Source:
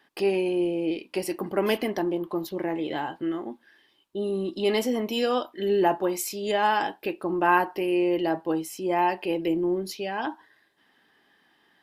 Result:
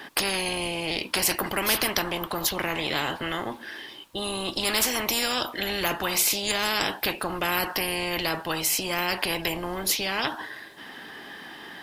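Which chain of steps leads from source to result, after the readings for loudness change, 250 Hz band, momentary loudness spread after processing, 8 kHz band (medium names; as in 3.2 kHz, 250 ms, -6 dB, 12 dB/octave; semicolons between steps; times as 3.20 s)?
+1.0 dB, -6.5 dB, 16 LU, +13.0 dB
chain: spectrum-flattening compressor 4:1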